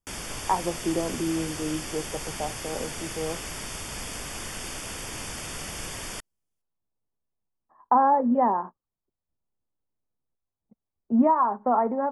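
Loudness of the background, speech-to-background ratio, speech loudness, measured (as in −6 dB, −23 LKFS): −34.5 LKFS, 8.5 dB, −26.0 LKFS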